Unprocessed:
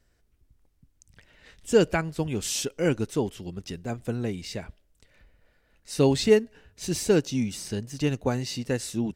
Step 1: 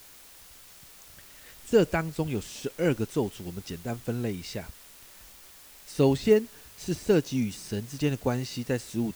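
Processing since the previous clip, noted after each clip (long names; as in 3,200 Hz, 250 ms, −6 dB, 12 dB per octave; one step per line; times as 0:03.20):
de-essing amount 85%
in parallel at −12 dB: bit-depth reduction 6 bits, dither triangular
on the sum: level −3 dB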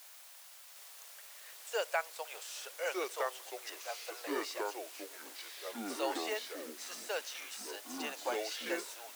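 Butterworth high-pass 550 Hz 48 dB per octave
delay with pitch and tempo change per echo 759 ms, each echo −4 semitones, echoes 3
level −3.5 dB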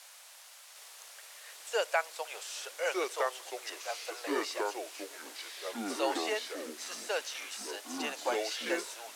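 low-pass filter 11,000 Hz 12 dB per octave
level +4 dB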